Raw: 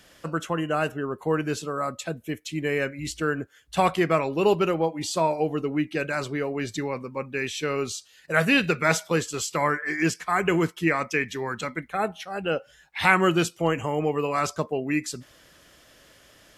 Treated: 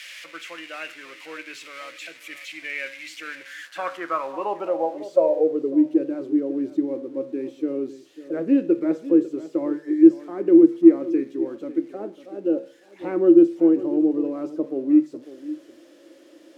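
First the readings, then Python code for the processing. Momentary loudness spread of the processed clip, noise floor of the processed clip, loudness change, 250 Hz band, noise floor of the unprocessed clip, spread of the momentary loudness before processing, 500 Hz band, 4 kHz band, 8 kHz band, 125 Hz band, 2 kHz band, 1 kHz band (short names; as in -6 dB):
21 LU, -51 dBFS, +4.5 dB, +9.5 dB, -56 dBFS, 10 LU, +3.0 dB, n/a, under -15 dB, under -15 dB, -10.5 dB, -7.5 dB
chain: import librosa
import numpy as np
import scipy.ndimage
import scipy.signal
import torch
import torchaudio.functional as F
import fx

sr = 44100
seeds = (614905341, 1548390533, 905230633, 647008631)

p1 = x + 0.5 * 10.0 ** (-18.5 / 20.0) * np.diff(np.sign(x), prepend=np.sign(x[:1]))
p2 = fx.lowpass(p1, sr, hz=3900.0, slope=6)
p3 = fx.high_shelf(p2, sr, hz=2100.0, db=8.5)
p4 = fx.hum_notches(p3, sr, base_hz=50, count=3)
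p5 = fx.comb_fb(p4, sr, f0_hz=68.0, decay_s=0.47, harmonics='all', damping=0.0, mix_pct=50)
p6 = fx.small_body(p5, sr, hz=(320.0, 530.0), ring_ms=40, db=15)
p7 = p6 + fx.echo_single(p6, sr, ms=548, db=-15.5, dry=0)
p8 = fx.filter_sweep_bandpass(p7, sr, from_hz=2200.0, to_hz=330.0, start_s=3.33, end_s=5.91, q=4.0)
y = F.gain(torch.from_numpy(p8), 4.5).numpy()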